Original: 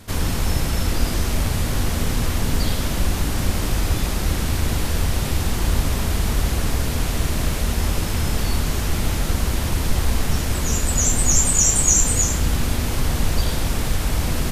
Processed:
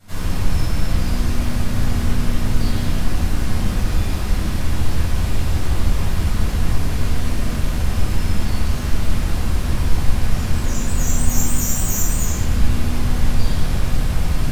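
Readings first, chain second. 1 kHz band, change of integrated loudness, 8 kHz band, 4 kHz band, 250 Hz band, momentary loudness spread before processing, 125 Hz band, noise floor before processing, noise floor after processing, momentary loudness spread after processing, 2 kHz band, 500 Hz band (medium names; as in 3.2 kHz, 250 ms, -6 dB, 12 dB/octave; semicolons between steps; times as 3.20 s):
-1.5 dB, -1.0 dB, -7.5 dB, -4.0 dB, +1.5 dB, 8 LU, +1.5 dB, -24 dBFS, -22 dBFS, 3 LU, -2.0 dB, -2.5 dB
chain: self-modulated delay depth 0.056 ms; simulated room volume 720 m³, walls mixed, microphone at 7.1 m; trim -15.5 dB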